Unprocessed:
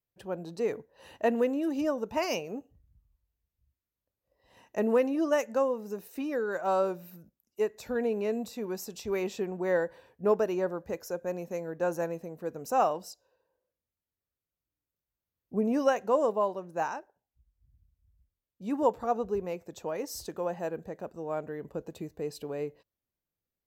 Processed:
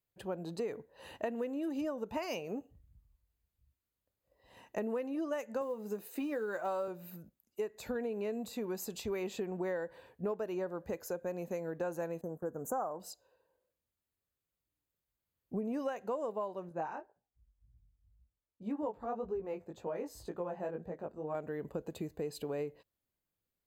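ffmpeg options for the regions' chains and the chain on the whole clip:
-filter_complex "[0:a]asettb=1/sr,asplit=3[a][b][c];[a]atrim=end=5.614[d];[b]atrim=start=5.61:end=6.88,asetpts=PTS-STARTPTS,afade=t=in:d=0.004:c=qsin,afade=t=out:st=1.266:d=0.004:c=qsin,highpass=140,acrusher=bits=9:mode=log:mix=0:aa=0.000001,asplit=2[e][f];[f]adelay=14,volume=-10.5dB[g];[e][g]amix=inputs=2:normalize=0,atrim=end_sample=56007[h];[c]atrim=start=6.876[i];[d][h]acrossfade=d=0.004:c1=hsin:c2=qsin[j];[j][i]acrossfade=d=0.004:c1=qsin:c2=hsin,asettb=1/sr,asplit=3[k][l][m];[k]atrim=end=12.214[n];[l]atrim=start=12.21:end=13,asetpts=PTS-STARTPTS,afade=t=in:d=0.004:c=qsin,afade=t=out:st=0.786:d=0.004:c=qsin,agate=range=-13dB:threshold=-49dB:ratio=16:release=100:detection=peak,asuperstop=centerf=3300:order=12:qfactor=0.71[o];[m]atrim=start=12.996[p];[n][o]acrossfade=d=0.004:c1=hsin:c2=qsin[q];[q][p]acrossfade=d=0.004:c1=qsin:c2=hsin,asettb=1/sr,asplit=3[r][s][t];[r]atrim=end=16.694[u];[s]atrim=start=16.69:end=21.35,asetpts=PTS-STARTPTS,afade=t=in:d=0.004:c=qsin,afade=t=out:st=4.656:d=0.004:c=qsin,highshelf=f=3k:g=-12,flanger=delay=17:depth=3.5:speed=1.9[v];[t]atrim=start=21.346[w];[u][v]acrossfade=d=0.004:c1=hsin:c2=qsin[x];[x][w]acrossfade=d=0.004:c1=qsin:c2=hsin,bandreject=f=5.6k:w=5.2,acompressor=threshold=-35dB:ratio=6,volume=1dB"

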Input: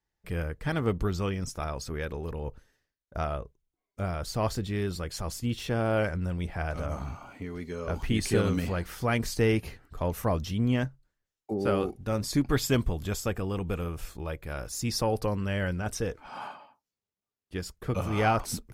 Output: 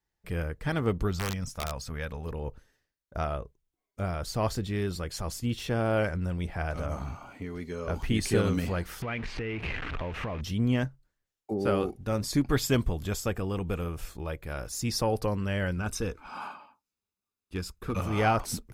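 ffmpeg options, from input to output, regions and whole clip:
-filter_complex "[0:a]asettb=1/sr,asplit=3[a][b][c];[a]atrim=end=1.114[d];[b]atrim=start=1.11:end=2.26,asetpts=PTS-STARTPTS,afade=t=in:d=0.004:c=qsin,afade=t=out:st=1.146:d=0.004:c=qsin,deesser=0.85,equalizer=f=360:t=o:w=0.46:g=-14.5,aeval=exprs='(mod(14.1*val(0)+1,2)-1)/14.1':c=same[e];[c]atrim=start=2.256[f];[d][e]acrossfade=d=0.004:c1=hsin:c2=qsin[g];[g][f]acrossfade=d=0.004:c1=qsin:c2=hsin,asettb=1/sr,asplit=3[h][i][j];[h]atrim=end=9.024[k];[i]atrim=start=9.02:end=10.41,asetpts=PTS-STARTPTS,afade=t=in:d=0.004:c=qsin,afade=t=out:st=1.386:d=0.004:c=qsin,aeval=exprs='val(0)+0.5*0.0282*sgn(val(0))':c=same,acompressor=threshold=-30dB:ratio=12:attack=3.2:release=140:knee=1:detection=peak,lowpass=f=2.5k:t=q:w=2.2[l];[j]atrim=start=10.406[m];[k][l]acrossfade=d=0.004:c1=hsin:c2=qsin[n];[n][m]acrossfade=d=0.004:c1=qsin:c2=hsin,asettb=1/sr,asplit=3[o][p][q];[o]atrim=end=15.764[r];[p]atrim=start=15.76:end=18.02,asetpts=PTS-STARTPTS,afade=t=in:d=0.004:c=qsin,afade=t=out:st=2.256:d=0.004:c=qsin,equalizer=f=130:t=o:w=0.29:g=-12.5,aecho=1:1:0.8:0.42,atrim=end_sample=99666,asoftclip=type=hard:threshold=-22.5dB[s];[q]atrim=start=18.016[t];[r][s]acrossfade=d=0.004:c1=hsin:c2=qsin[u];[u][t]acrossfade=d=0.004:c1=qsin:c2=hsin"

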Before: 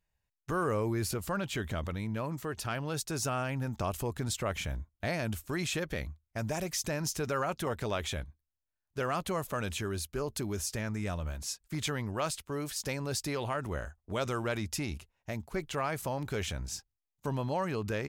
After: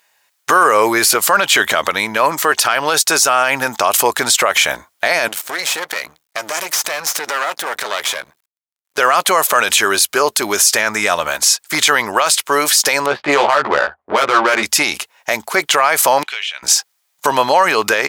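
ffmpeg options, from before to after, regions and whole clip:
-filter_complex "[0:a]asettb=1/sr,asplit=3[a][b][c];[a]atrim=end=5.284[d];[b]atrim=start=5.28:end=8.98,asetpts=PTS-STARTPTS,afade=t=in:d=0.004:c=qsin,afade=t=out:st=3.696:d=0.004:c=qsin,aeval=exprs='max(val(0),0)':c=same,acompressor=threshold=-43dB:ratio=3:attack=3.2:release=140:knee=1:detection=peak[e];[c]atrim=start=8.976[f];[d][e]acrossfade=d=0.004:c1=hsin:c2=qsin[g];[g][f]acrossfade=d=0.004:c1=qsin:c2=hsin,asettb=1/sr,asplit=3[h][i][j];[h]atrim=end=13.064[k];[i]atrim=start=13.06:end=14.63,asetpts=PTS-STARTPTS,afade=t=in:d=0.004:c=qsin,afade=t=out:st=1.566:d=0.004:c=qsin,lowpass=f=3.4k:w=0.5412,lowpass=f=3.4k:w=1.3066,adynamicsmooth=sensitivity=6.5:basefreq=860,asplit=2[l][m];[m]adelay=14,volume=-2.5dB[n];[l][n]amix=inputs=2:normalize=0,atrim=end_sample=69237[o];[j]atrim=start=14.626[p];[k][o]acrossfade=d=0.004:c1=hsin:c2=qsin[q];[q][p]acrossfade=d=0.004:c1=qsin:c2=hsin,asettb=1/sr,asplit=3[r][s][t];[r]atrim=end=16.234[u];[s]atrim=start=16.23:end=16.63,asetpts=PTS-STARTPTS,afade=t=in:d=0.004:c=qsin,afade=t=out:st=0.396:d=0.004:c=qsin,bandpass=f=2.8k:t=q:w=3.2,acompressor=threshold=-47dB:ratio=10:attack=3.2:release=140:knee=1:detection=peak[v];[t]atrim=start=16.626[w];[u][v]acrossfade=d=0.004:c1=hsin:c2=qsin[x];[x][w]acrossfade=d=0.004:c1=qsin:c2=hsin,highpass=780,bandreject=f=2.7k:w=25,alimiter=level_in=31dB:limit=-1dB:release=50:level=0:latency=1,volume=-1dB"

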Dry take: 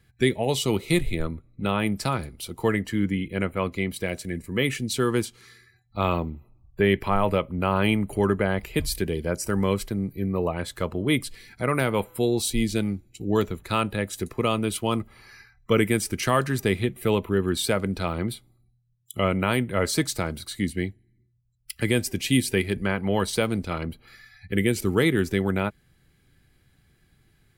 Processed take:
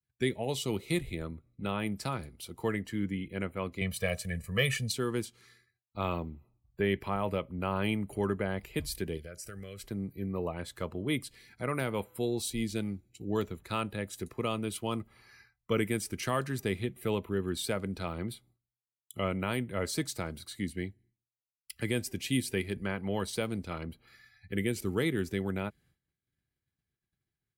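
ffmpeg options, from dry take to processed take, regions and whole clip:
-filter_complex "[0:a]asettb=1/sr,asplit=3[a][b][c];[a]atrim=end=3.814[d];[b]atrim=start=3.81:end=4.92,asetpts=PTS-STARTPTS,afade=t=in:d=0.004:c=qsin,afade=t=out:st=1.106:d=0.004:c=qsin,equalizer=f=330:t=o:w=0.62:g=-11,aecho=1:1:1.7:0.79,atrim=end_sample=48951,acontrast=26[e];[c]atrim=start=4.916[f];[d][e]acrossfade=d=0.004:c1=hsin:c2=qsin[g];[g][f]acrossfade=d=0.004:c1=qsin:c2=hsin,asettb=1/sr,asplit=3[h][i][j];[h]atrim=end=9.174[k];[i]atrim=start=9.17:end=9.84,asetpts=PTS-STARTPTS,afade=t=in:d=0.004:c=qsin,afade=t=out:st=0.666:d=0.004:c=qsin,equalizer=f=260:t=o:w=1.4:g=-12,acompressor=threshold=-31dB:ratio=4:attack=3.2:release=140:knee=1:detection=peak,asuperstop=centerf=930:order=4:qfactor=1.6[l];[j]atrim=start=9.836[m];[k][l]acrossfade=d=0.004:c1=hsin:c2=qsin[n];[n][m]acrossfade=d=0.004:c1=qsin:c2=hsin,agate=range=-33dB:threshold=-49dB:ratio=3:detection=peak,highpass=46,adynamicequalizer=threshold=0.0178:dfrequency=1200:dqfactor=0.79:tfrequency=1200:tqfactor=0.79:attack=5:release=100:ratio=0.375:range=1.5:mode=cutabove:tftype=bell,volume=-8.5dB"

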